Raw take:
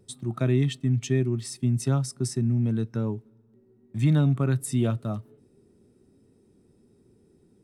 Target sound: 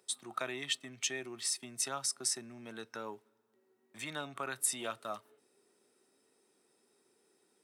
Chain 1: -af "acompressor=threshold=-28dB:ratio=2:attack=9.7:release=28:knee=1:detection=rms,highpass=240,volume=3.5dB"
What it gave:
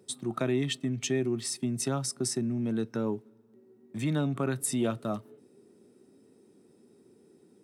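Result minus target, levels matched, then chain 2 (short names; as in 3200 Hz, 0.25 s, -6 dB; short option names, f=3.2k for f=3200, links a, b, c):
250 Hz band +13.0 dB
-af "acompressor=threshold=-28dB:ratio=2:attack=9.7:release=28:knee=1:detection=rms,highpass=900,volume=3.5dB"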